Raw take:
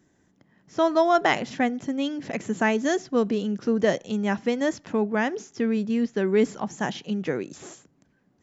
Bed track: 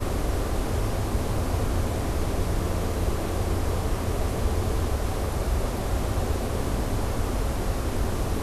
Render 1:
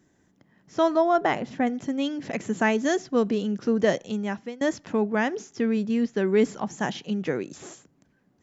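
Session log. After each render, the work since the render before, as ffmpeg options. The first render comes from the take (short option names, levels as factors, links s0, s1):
-filter_complex "[0:a]asettb=1/sr,asplit=3[s0][s1][s2];[s0]atrim=end=0.964[s3];[s1]atrim=start=0.96:end=1.67,asetpts=PTS-STARTPTS,afade=t=in:d=0.004:c=qsin,afade=t=out:st=0.706:d=0.004:c=qsin,equalizer=f=5500:w=0.35:g=-10[s4];[s2]atrim=start=1.666[s5];[s3][s4]acrossfade=d=0.004:c1=hsin:c2=qsin[s6];[s6][s5]acrossfade=d=0.004:c1=qsin:c2=hsin,asplit=2[s7][s8];[s7]atrim=end=4.61,asetpts=PTS-STARTPTS,afade=t=out:st=4.02:d=0.59:silence=0.112202[s9];[s8]atrim=start=4.61,asetpts=PTS-STARTPTS,afade=t=in:d=0.004:c=hsin:silence=0.112202[s10];[s9][s10]concat=n=2:v=0:a=1"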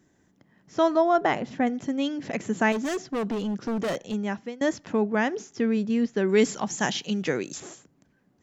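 -filter_complex "[0:a]asettb=1/sr,asplit=3[s0][s1][s2];[s0]atrim=end=2.724[s3];[s1]atrim=start=2.72:end=4.14,asetpts=PTS-STARTPTS,afade=t=in:d=0.004:c=qsin,afade=t=out:st=1.416:d=0.004:c=qsin,asoftclip=type=hard:threshold=0.0562[s4];[s2]atrim=start=4.136[s5];[s3][s4]acrossfade=d=0.004:c1=hsin:c2=qsin[s6];[s6][s5]acrossfade=d=0.004:c1=qsin:c2=hsin,asettb=1/sr,asplit=3[s7][s8][s9];[s7]atrim=end=6.294[s10];[s8]atrim=start=6.29:end=7.6,asetpts=PTS-STARTPTS,afade=t=in:d=0.004:c=qsin,afade=t=out:st=1.306:d=0.004:c=qsin,highshelf=f=2600:g=11.5[s11];[s9]atrim=start=7.596[s12];[s10][s11]acrossfade=d=0.004:c1=hsin:c2=qsin[s13];[s13][s12]acrossfade=d=0.004:c1=qsin:c2=hsin"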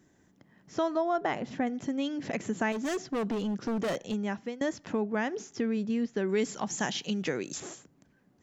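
-af "acompressor=threshold=0.0282:ratio=2"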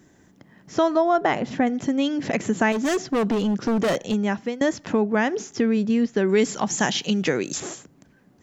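-af "volume=2.82"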